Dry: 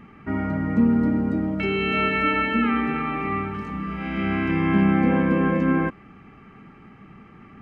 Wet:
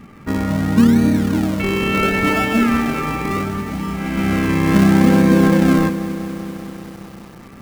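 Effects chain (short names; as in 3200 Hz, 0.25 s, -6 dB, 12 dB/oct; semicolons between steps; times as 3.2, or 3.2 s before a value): in parallel at -5 dB: decimation with a swept rate 41×, swing 100% 0.71 Hz; on the sum: lo-fi delay 0.194 s, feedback 80%, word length 6-bit, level -14 dB; gain +3 dB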